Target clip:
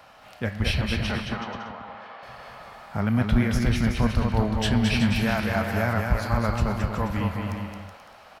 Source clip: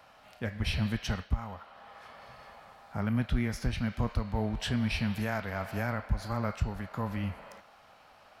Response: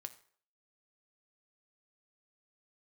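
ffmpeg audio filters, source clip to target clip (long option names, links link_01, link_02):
-filter_complex "[0:a]asettb=1/sr,asplit=3[link_01][link_02][link_03];[link_01]atrim=end=0.814[link_04];[link_02]atrim=start=0.81:end=2.23,asetpts=PTS-STARTPTS,afade=type=in:duration=0.004:curve=qsin,afade=type=out:start_time=1.416:duration=0.004:curve=qsin,highpass=260,lowpass=3500[link_05];[link_03]atrim=start=2.226[link_06];[link_04][link_05]acrossfade=duration=0.004:curve1=hsin:curve2=qsin[link_07];[link_07][link_06]acrossfade=duration=0.004:curve1=qsin:curve2=hsin,aecho=1:1:220|374|481.8|557.3|610.1:0.631|0.398|0.251|0.158|0.1,volume=6.5dB"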